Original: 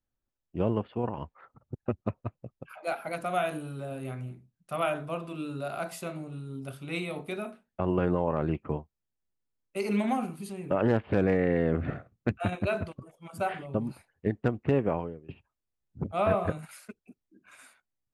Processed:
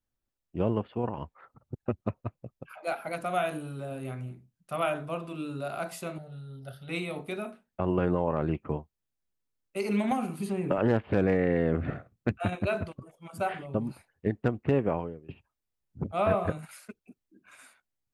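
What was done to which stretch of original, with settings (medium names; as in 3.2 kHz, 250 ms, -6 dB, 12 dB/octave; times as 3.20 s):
6.18–6.89 s: static phaser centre 1.6 kHz, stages 8
10.11–10.78 s: three bands compressed up and down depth 100%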